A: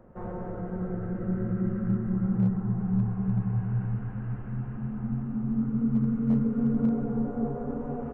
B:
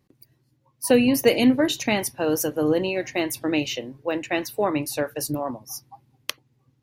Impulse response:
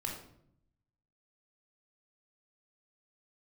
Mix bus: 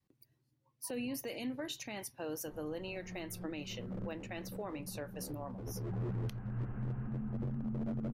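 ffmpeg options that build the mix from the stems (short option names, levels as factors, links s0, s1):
-filter_complex "[0:a]acrossover=split=200|3000[s0][s1][s2];[s1]acompressor=threshold=0.00891:ratio=6[s3];[s0][s3][s2]amix=inputs=3:normalize=0,aeval=exprs='0.0422*(abs(mod(val(0)/0.0422+3,4)-2)-1)':c=same,adelay=2300,volume=0.794[s4];[1:a]adynamicequalizer=threshold=0.0224:dfrequency=340:dqfactor=0.89:tfrequency=340:tqfactor=0.89:attack=5:release=100:ratio=0.375:range=2.5:mode=cutabove:tftype=bell,alimiter=limit=0.178:level=0:latency=1:release=37,volume=0.251,asplit=2[s5][s6];[s6]apad=whole_len=459970[s7];[s4][s7]sidechaincompress=threshold=0.00631:ratio=8:attack=38:release=791[s8];[s8][s5]amix=inputs=2:normalize=0,alimiter=level_in=2.37:limit=0.0631:level=0:latency=1:release=454,volume=0.422"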